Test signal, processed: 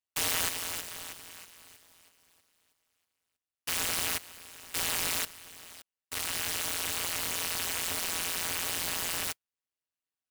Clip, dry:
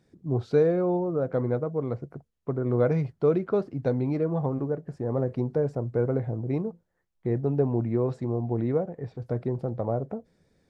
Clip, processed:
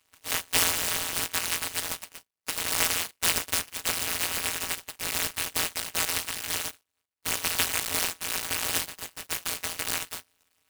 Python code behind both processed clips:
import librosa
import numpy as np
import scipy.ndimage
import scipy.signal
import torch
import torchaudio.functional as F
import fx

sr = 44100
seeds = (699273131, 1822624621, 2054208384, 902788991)

y = np.r_[np.sort(x[:len(x) // 256 * 256].reshape(-1, 256), axis=1).ravel(), x[len(x) // 256 * 256:]]
y = scipy.signal.sosfilt(scipy.signal.butter(2, 230.0, 'highpass', fs=sr, output='sos'), y)
y = fx.tube_stage(y, sr, drive_db=10.0, bias=0.5)
y = fx.freq_invert(y, sr, carrier_hz=3200)
y = fx.noise_mod_delay(y, sr, seeds[0], noise_hz=5800.0, depth_ms=0.096)
y = y * 10.0 ** (1.0 / 20.0)